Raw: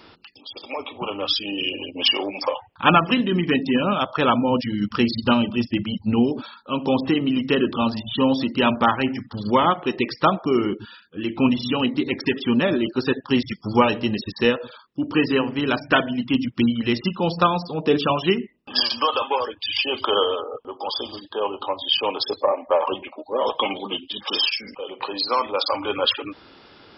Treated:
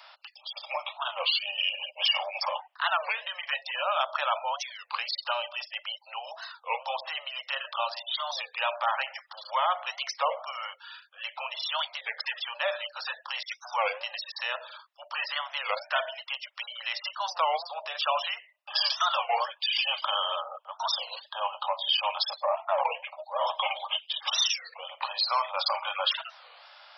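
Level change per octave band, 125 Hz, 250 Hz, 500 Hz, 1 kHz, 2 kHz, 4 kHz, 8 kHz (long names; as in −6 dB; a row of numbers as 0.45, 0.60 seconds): below −40 dB, below −40 dB, −12.5 dB, −5.5 dB, −5.0 dB, −4.0 dB, can't be measured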